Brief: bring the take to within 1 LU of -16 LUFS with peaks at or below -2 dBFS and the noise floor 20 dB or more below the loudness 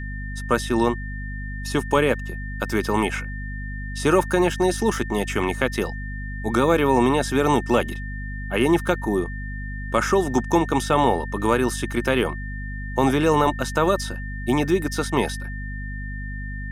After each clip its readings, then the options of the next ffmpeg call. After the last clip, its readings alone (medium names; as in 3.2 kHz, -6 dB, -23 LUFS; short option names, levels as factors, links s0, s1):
hum 50 Hz; highest harmonic 250 Hz; hum level -29 dBFS; steady tone 1.8 kHz; tone level -36 dBFS; loudness -23.0 LUFS; peak level -5.0 dBFS; loudness target -16.0 LUFS
-> -af "bandreject=f=50:t=h:w=4,bandreject=f=100:t=h:w=4,bandreject=f=150:t=h:w=4,bandreject=f=200:t=h:w=4,bandreject=f=250:t=h:w=4"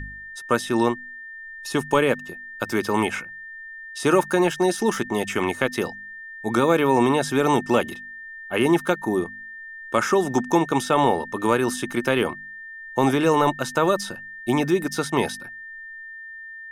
hum not found; steady tone 1.8 kHz; tone level -36 dBFS
-> -af "bandreject=f=1800:w=30"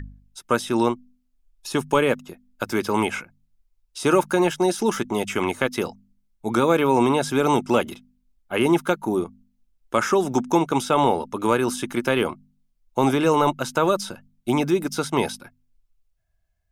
steady tone not found; loudness -22.5 LUFS; peak level -5.0 dBFS; loudness target -16.0 LUFS
-> -af "volume=2.11,alimiter=limit=0.794:level=0:latency=1"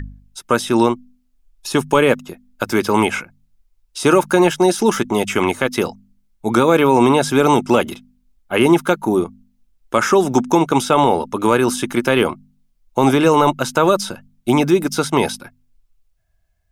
loudness -16.5 LUFS; peak level -2.0 dBFS; noise floor -63 dBFS